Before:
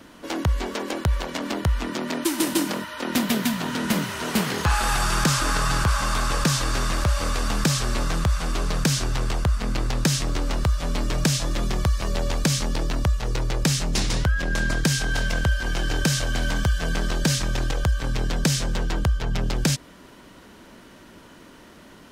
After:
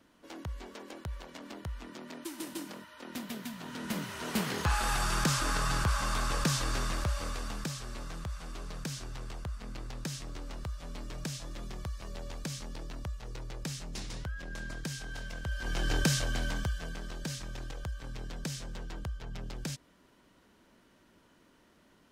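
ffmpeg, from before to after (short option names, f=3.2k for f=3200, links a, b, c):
-af "volume=4dB,afade=t=in:st=3.53:d=0.99:silence=0.334965,afade=t=out:st=6.72:d=1.03:silence=0.354813,afade=t=in:st=15.43:d=0.51:silence=0.251189,afade=t=out:st=15.94:d=1.02:silence=0.266073"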